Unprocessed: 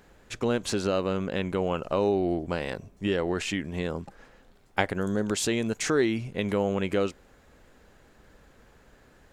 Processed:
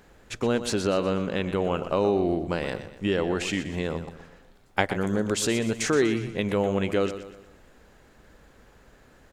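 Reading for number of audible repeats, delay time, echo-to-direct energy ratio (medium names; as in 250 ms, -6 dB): 4, 122 ms, -10.5 dB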